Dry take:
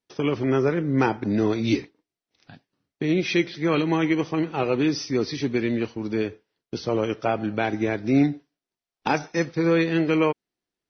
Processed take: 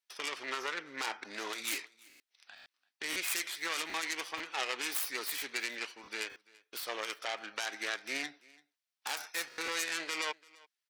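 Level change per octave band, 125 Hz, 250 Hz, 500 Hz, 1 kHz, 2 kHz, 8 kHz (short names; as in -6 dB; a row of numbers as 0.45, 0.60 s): under -35 dB, -28.0 dB, -21.0 dB, -11.5 dB, -5.0 dB, n/a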